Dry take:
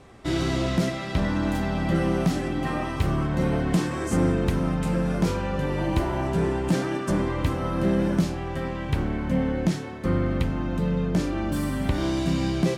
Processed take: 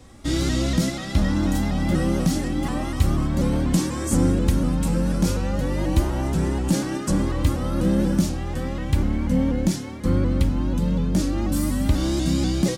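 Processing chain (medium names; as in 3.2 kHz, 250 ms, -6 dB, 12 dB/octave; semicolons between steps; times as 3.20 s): tone controls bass +9 dB, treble +12 dB; comb 3.6 ms, depth 48%; vibrato with a chosen wave saw up 4.1 Hz, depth 100 cents; trim -3 dB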